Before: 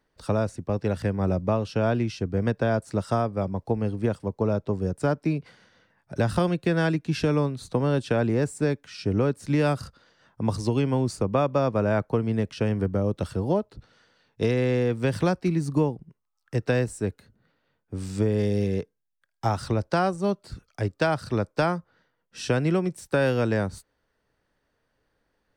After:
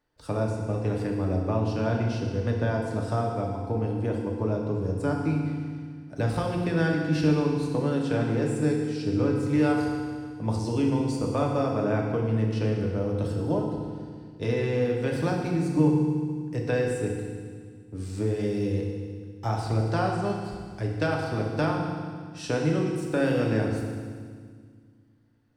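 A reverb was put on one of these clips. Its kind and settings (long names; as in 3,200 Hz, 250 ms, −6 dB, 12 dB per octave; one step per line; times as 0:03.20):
feedback delay network reverb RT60 1.8 s, low-frequency decay 1.45×, high-frequency decay 1×, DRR −1 dB
level −6 dB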